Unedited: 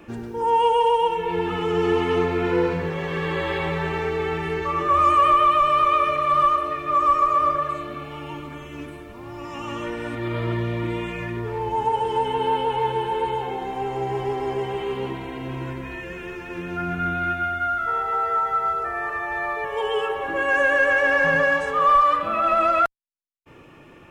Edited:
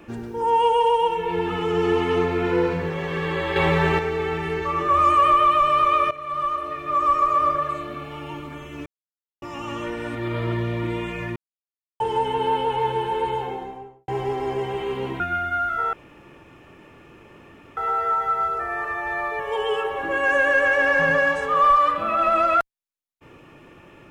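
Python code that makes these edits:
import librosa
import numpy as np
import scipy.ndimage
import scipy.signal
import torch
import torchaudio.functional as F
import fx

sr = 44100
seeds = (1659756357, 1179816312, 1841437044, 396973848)

y = fx.studio_fade_out(x, sr, start_s=13.35, length_s=0.73)
y = fx.edit(y, sr, fx.clip_gain(start_s=3.56, length_s=0.43, db=6.0),
    fx.fade_in_from(start_s=6.11, length_s=1.48, curve='qsin', floor_db=-15.0),
    fx.silence(start_s=8.86, length_s=0.56),
    fx.silence(start_s=11.36, length_s=0.64),
    fx.cut(start_s=15.2, length_s=2.09),
    fx.insert_room_tone(at_s=18.02, length_s=1.84), tone=tone)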